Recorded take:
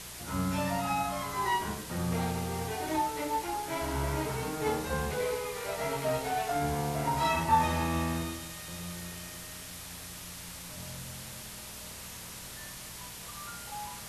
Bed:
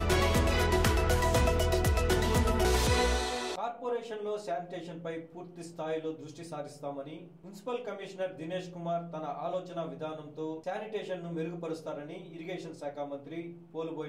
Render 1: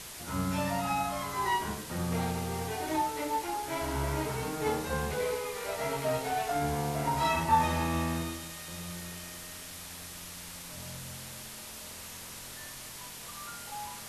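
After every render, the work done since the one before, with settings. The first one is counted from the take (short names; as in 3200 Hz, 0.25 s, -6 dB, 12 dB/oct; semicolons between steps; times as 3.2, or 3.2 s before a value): de-hum 60 Hz, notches 3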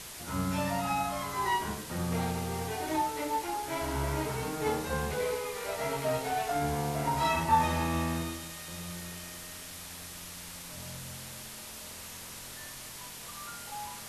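nothing audible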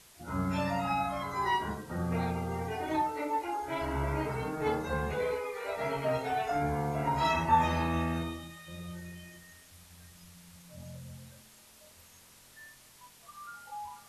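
noise print and reduce 13 dB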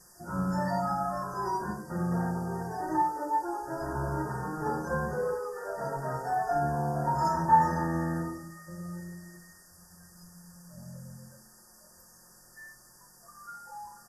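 FFT band-reject 1900–4600 Hz; comb 5.6 ms, depth 64%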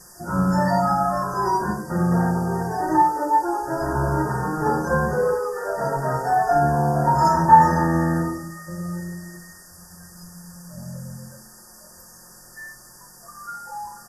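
gain +10 dB; limiter -1 dBFS, peak gain reduction 1 dB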